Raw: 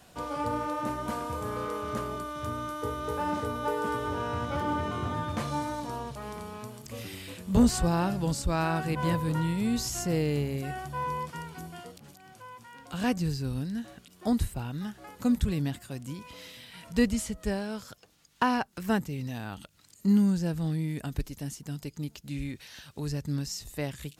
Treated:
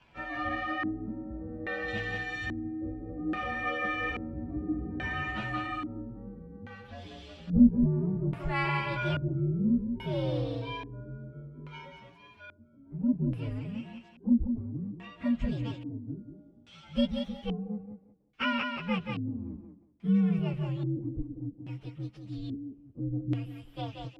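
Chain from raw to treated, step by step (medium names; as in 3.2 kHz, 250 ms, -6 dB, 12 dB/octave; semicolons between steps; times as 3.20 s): frequency axis rescaled in octaves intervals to 126%; 1.88–2.92 s: ten-band graphic EQ 125 Hz +5 dB, 1 kHz -4 dB, 4 kHz +8 dB, 8 kHz +9 dB; on a send: thinning echo 181 ms, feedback 24%, high-pass 250 Hz, level -4.5 dB; on the sum: LFO low-pass square 0.6 Hz 300–2900 Hz; trim -2.5 dB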